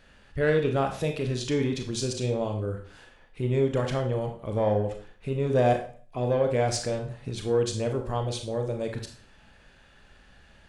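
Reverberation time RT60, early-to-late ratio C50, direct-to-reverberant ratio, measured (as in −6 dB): 0.45 s, 8.0 dB, 4.0 dB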